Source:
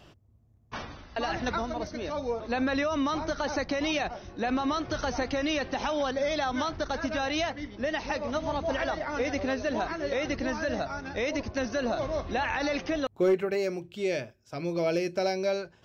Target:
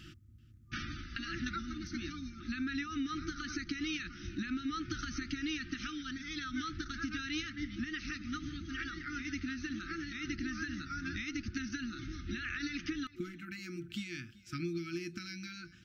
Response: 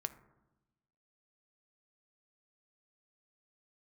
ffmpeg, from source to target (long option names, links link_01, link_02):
-af "acompressor=threshold=-37dB:ratio=6,aecho=1:1:384:0.0891,afftfilt=real='re*(1-between(b*sr/4096,360,1200))':imag='im*(1-between(b*sr/4096,360,1200))':win_size=4096:overlap=0.75,volume=3.5dB"